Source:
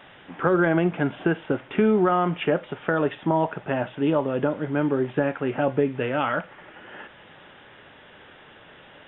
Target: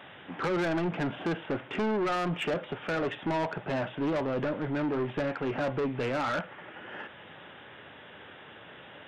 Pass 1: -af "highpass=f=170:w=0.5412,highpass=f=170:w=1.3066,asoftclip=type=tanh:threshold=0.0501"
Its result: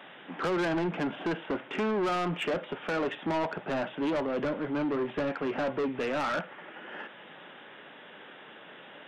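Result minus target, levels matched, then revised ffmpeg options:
125 Hz band -4.0 dB
-af "highpass=f=67:w=0.5412,highpass=f=67:w=1.3066,asoftclip=type=tanh:threshold=0.0501"

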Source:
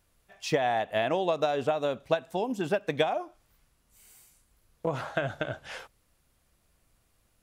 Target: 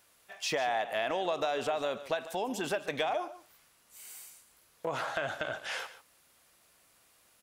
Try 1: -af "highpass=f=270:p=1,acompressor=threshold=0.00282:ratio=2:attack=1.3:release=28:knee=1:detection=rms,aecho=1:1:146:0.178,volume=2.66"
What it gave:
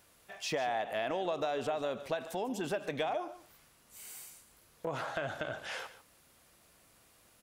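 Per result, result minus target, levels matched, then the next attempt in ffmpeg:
compression: peak gain reduction +5 dB; 250 Hz band +3.0 dB
-af "highpass=f=270:p=1,acompressor=threshold=0.00708:ratio=2:attack=1.3:release=28:knee=1:detection=rms,aecho=1:1:146:0.178,volume=2.66"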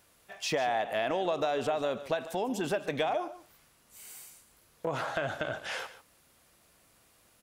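250 Hz band +3.0 dB
-af "highpass=f=740:p=1,acompressor=threshold=0.00708:ratio=2:attack=1.3:release=28:knee=1:detection=rms,aecho=1:1:146:0.178,volume=2.66"

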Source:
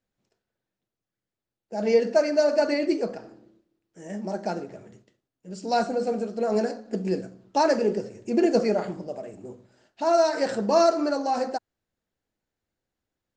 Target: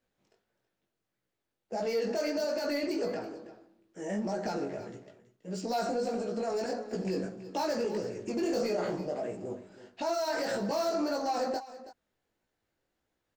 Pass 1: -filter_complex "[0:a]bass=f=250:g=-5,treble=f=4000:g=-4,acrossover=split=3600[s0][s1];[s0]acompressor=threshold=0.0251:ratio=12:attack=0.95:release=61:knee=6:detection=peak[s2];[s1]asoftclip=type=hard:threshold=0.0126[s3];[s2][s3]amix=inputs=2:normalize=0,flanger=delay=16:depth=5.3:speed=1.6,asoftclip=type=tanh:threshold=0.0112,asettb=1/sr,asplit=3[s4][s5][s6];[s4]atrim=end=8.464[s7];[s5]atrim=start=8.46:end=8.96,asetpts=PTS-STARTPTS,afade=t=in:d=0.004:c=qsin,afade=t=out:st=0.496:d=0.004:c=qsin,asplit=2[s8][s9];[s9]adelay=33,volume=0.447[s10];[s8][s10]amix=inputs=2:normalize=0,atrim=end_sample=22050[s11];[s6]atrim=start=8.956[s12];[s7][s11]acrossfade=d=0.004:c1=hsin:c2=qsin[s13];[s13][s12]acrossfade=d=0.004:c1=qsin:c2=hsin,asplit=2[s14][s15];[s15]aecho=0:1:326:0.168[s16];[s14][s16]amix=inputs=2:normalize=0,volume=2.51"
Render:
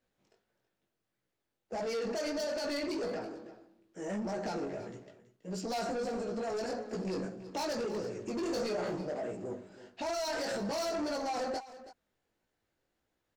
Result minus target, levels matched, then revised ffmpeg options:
saturation: distortion +15 dB; hard clipper: distortion -8 dB
-filter_complex "[0:a]bass=f=250:g=-5,treble=f=4000:g=-4,acrossover=split=3600[s0][s1];[s0]acompressor=threshold=0.0251:ratio=12:attack=0.95:release=61:knee=6:detection=peak[s2];[s1]asoftclip=type=hard:threshold=0.00473[s3];[s2][s3]amix=inputs=2:normalize=0,flanger=delay=16:depth=5.3:speed=1.6,asoftclip=type=tanh:threshold=0.0376,asettb=1/sr,asplit=3[s4][s5][s6];[s4]atrim=end=8.464[s7];[s5]atrim=start=8.46:end=8.96,asetpts=PTS-STARTPTS,afade=t=in:d=0.004:c=qsin,afade=t=out:st=0.496:d=0.004:c=qsin,asplit=2[s8][s9];[s9]adelay=33,volume=0.447[s10];[s8][s10]amix=inputs=2:normalize=0,atrim=end_sample=22050[s11];[s6]atrim=start=8.956[s12];[s7][s11]acrossfade=d=0.004:c1=hsin:c2=qsin[s13];[s13][s12]acrossfade=d=0.004:c1=qsin:c2=hsin,asplit=2[s14][s15];[s15]aecho=0:1:326:0.168[s16];[s14][s16]amix=inputs=2:normalize=0,volume=2.51"

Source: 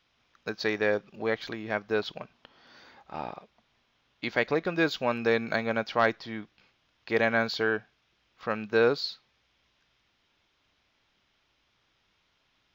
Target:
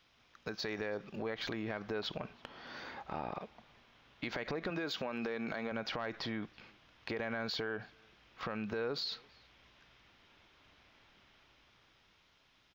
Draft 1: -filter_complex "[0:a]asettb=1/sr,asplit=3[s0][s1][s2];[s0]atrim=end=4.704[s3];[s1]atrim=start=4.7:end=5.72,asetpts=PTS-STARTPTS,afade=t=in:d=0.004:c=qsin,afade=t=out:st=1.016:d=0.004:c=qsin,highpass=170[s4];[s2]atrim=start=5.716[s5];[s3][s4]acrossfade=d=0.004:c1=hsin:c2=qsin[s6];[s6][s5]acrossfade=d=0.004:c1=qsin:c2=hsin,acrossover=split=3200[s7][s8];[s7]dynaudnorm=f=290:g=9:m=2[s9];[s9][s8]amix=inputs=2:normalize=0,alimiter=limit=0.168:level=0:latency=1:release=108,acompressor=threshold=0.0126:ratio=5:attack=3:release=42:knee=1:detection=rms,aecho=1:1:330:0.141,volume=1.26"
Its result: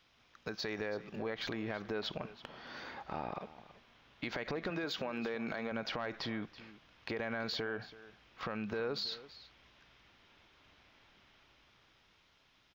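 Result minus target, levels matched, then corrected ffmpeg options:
echo-to-direct +12 dB
-filter_complex "[0:a]asettb=1/sr,asplit=3[s0][s1][s2];[s0]atrim=end=4.704[s3];[s1]atrim=start=4.7:end=5.72,asetpts=PTS-STARTPTS,afade=t=in:d=0.004:c=qsin,afade=t=out:st=1.016:d=0.004:c=qsin,highpass=170[s4];[s2]atrim=start=5.716[s5];[s3][s4]acrossfade=d=0.004:c1=hsin:c2=qsin[s6];[s6][s5]acrossfade=d=0.004:c1=qsin:c2=hsin,acrossover=split=3200[s7][s8];[s7]dynaudnorm=f=290:g=9:m=2[s9];[s9][s8]amix=inputs=2:normalize=0,alimiter=limit=0.168:level=0:latency=1:release=108,acompressor=threshold=0.0126:ratio=5:attack=3:release=42:knee=1:detection=rms,aecho=1:1:330:0.0355,volume=1.26"

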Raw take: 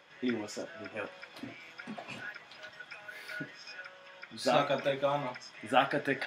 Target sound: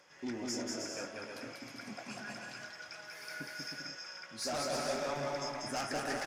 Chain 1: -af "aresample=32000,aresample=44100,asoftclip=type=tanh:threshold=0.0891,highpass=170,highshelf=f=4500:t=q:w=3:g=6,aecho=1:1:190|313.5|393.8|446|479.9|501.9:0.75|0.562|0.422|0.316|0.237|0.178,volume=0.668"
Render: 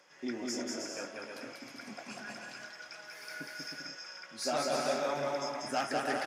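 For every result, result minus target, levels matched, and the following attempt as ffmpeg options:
saturation: distortion -7 dB; 125 Hz band -4.5 dB
-af "aresample=32000,aresample=44100,asoftclip=type=tanh:threshold=0.0316,highpass=170,highshelf=f=4500:t=q:w=3:g=6,aecho=1:1:190|313.5|393.8|446|479.9|501.9:0.75|0.562|0.422|0.316|0.237|0.178,volume=0.668"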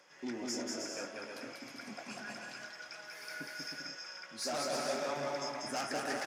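125 Hz band -5.0 dB
-af "aresample=32000,aresample=44100,asoftclip=type=tanh:threshold=0.0316,highshelf=f=4500:t=q:w=3:g=6,aecho=1:1:190|313.5|393.8|446|479.9|501.9:0.75|0.562|0.422|0.316|0.237|0.178,volume=0.668"

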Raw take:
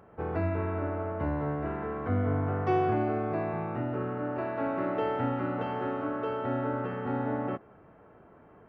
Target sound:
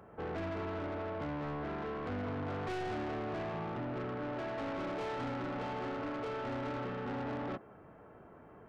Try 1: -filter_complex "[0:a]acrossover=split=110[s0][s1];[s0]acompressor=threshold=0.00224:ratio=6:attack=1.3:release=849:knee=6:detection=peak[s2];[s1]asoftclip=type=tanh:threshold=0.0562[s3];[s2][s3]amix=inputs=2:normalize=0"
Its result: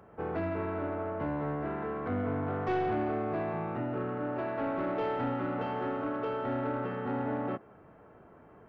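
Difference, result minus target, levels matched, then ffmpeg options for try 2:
saturation: distortion -9 dB
-filter_complex "[0:a]acrossover=split=110[s0][s1];[s0]acompressor=threshold=0.00224:ratio=6:attack=1.3:release=849:knee=6:detection=peak[s2];[s1]asoftclip=type=tanh:threshold=0.0158[s3];[s2][s3]amix=inputs=2:normalize=0"

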